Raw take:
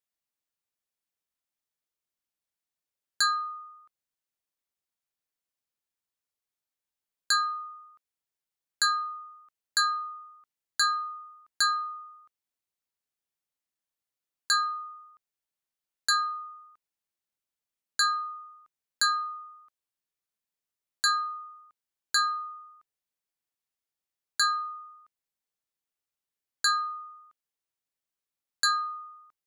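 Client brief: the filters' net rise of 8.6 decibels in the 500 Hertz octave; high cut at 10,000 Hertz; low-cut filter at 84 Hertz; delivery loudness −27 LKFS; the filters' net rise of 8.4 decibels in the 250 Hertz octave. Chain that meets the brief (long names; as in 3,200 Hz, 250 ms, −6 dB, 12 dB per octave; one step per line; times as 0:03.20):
high-pass filter 84 Hz
low-pass filter 10,000 Hz
parametric band 250 Hz +8 dB
parametric band 500 Hz +8.5 dB
level +0.5 dB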